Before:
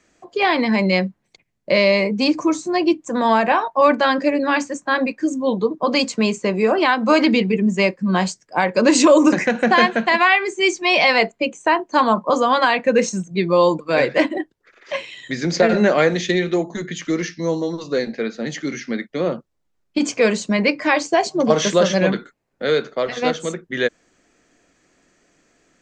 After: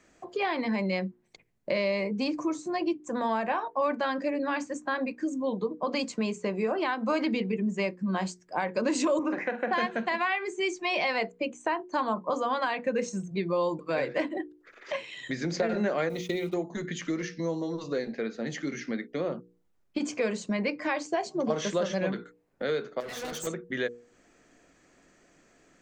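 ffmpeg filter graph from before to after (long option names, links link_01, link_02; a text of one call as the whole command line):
ffmpeg -i in.wav -filter_complex "[0:a]asettb=1/sr,asplit=3[link_01][link_02][link_03];[link_01]atrim=end=9.194[link_04];[link_02]atrim=start=9.19:end=9.73,asetpts=PTS-STARTPTS,afade=type=in:duration=0.004:curve=qsin,afade=type=out:start_time=0.536:duration=0.004:curve=qsin,highpass=330,lowpass=2500,asplit=2[link_05][link_06];[link_06]adelay=45,volume=-12dB[link_07];[link_05][link_07]amix=inputs=2:normalize=0,atrim=end_sample=23814[link_08];[link_03]atrim=start=9.726[link_09];[link_04][link_08]acrossfade=duration=0.004:curve1=hsin:curve2=qsin[link_10];[link_10][link_09]acrossfade=duration=0.004:curve1=qsin:curve2=hsin,asettb=1/sr,asplit=3[link_11][link_12][link_13];[link_11]atrim=end=16.094[link_14];[link_12]atrim=start=16.09:end=16.54,asetpts=PTS-STARTPTS,afade=type=in:duration=0.004:curve=qsin,afade=type=out:start_time=0.446:duration=0.004:curve=qsin,agate=range=-33dB:threshold=-22dB:ratio=3:release=100:detection=peak,acrusher=bits=6:mix=0:aa=0.5,asuperstop=centerf=1700:order=4:qfactor=4.1[link_15];[link_13]atrim=start=16.536[link_16];[link_14][link_15]acrossfade=duration=0.004:curve1=hsin:curve2=qsin[link_17];[link_17][link_16]acrossfade=duration=0.004:curve1=qsin:curve2=hsin,asettb=1/sr,asplit=3[link_18][link_19][link_20];[link_18]atrim=end=23.004[link_21];[link_19]atrim=start=23:end=23.47,asetpts=PTS-STARTPTS,afade=type=in:duration=0.004:curve=qsin,afade=type=out:start_time=0.466:duration=0.004:curve=qsin,bass=frequency=250:gain=-2,treble=frequency=4000:gain=10,acompressor=threshold=-20dB:ratio=6:attack=3.2:release=140:knee=1:detection=peak,volume=29dB,asoftclip=hard,volume=-29dB[link_22];[link_20]atrim=start=23.466[link_23];[link_21][link_22]acrossfade=duration=0.004:curve1=hsin:curve2=qsin[link_24];[link_24][link_23]acrossfade=duration=0.004:curve1=qsin:curve2=hsin,equalizer=frequency=4900:width=0.52:gain=-4,bandreject=frequency=60:width_type=h:width=6,bandreject=frequency=120:width_type=h:width=6,bandreject=frequency=180:width_type=h:width=6,bandreject=frequency=240:width_type=h:width=6,bandreject=frequency=300:width_type=h:width=6,bandreject=frequency=360:width_type=h:width=6,bandreject=frequency=420:width_type=h:width=6,bandreject=frequency=480:width_type=h:width=6,acompressor=threshold=-35dB:ratio=2" out.wav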